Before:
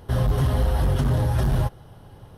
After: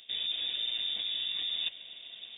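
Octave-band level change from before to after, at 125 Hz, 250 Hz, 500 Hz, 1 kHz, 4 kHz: under -40 dB, under -30 dB, under -30 dB, under -25 dB, +13.0 dB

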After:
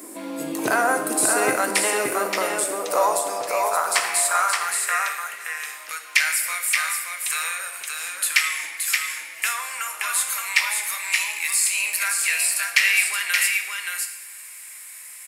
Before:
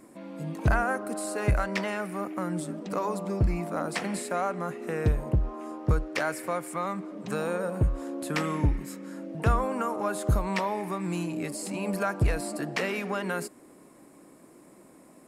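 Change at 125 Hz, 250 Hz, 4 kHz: under -20 dB, -4.0 dB, +16.5 dB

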